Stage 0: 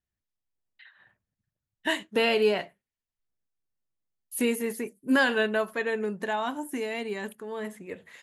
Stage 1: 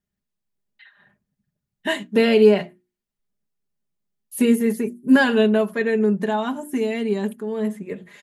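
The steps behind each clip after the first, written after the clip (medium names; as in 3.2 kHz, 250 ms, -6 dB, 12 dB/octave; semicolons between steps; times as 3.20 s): peaking EQ 170 Hz +10.5 dB 2.7 oct; hum notches 60/120/180/240/300/360 Hz; comb 4.9 ms, depth 58%; trim +1 dB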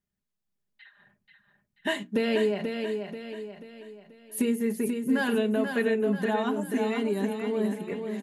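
compression, threshold -19 dBFS, peak gain reduction 10.5 dB; on a send: feedback delay 485 ms, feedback 44%, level -6 dB; on the sum: trim -3.5 dB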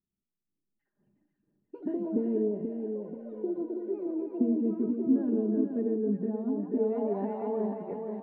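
repeats whose band climbs or falls 179 ms, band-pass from 830 Hz, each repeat 1.4 oct, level -2.5 dB; ever faster or slower copies 496 ms, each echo +7 st, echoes 3, each echo -6 dB; low-pass sweep 330 Hz -> 780 Hz, 6.61–7.20 s; trim -5.5 dB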